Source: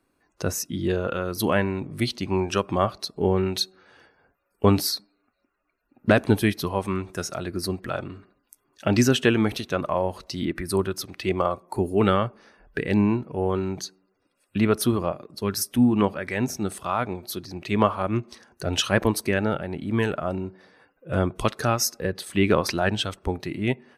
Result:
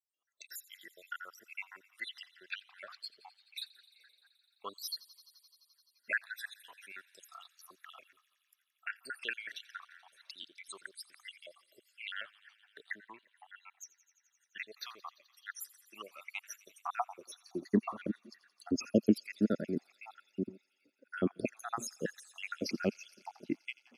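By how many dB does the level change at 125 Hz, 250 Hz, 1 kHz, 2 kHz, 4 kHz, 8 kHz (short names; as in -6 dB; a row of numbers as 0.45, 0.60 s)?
-21.0, -14.0, -17.0, -11.0, -15.5, -17.0 dB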